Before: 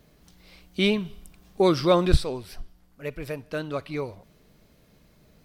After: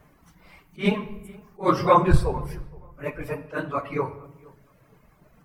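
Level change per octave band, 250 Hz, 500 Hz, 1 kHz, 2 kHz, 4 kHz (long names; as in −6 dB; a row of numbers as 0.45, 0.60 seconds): −1.0, −0.5, +8.0, +1.0, −8.0 decibels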